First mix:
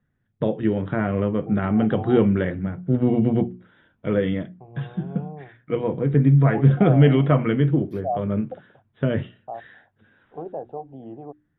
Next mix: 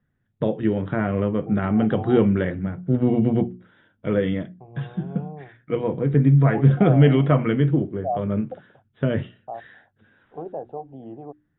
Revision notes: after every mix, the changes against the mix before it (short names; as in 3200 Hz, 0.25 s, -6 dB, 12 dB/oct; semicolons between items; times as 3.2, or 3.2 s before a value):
background: muted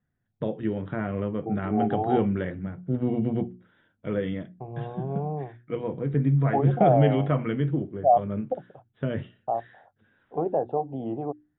first voice -6.5 dB; second voice +7.0 dB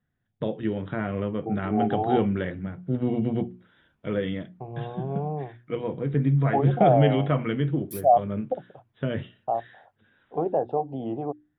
background: unmuted; master: remove air absorption 280 m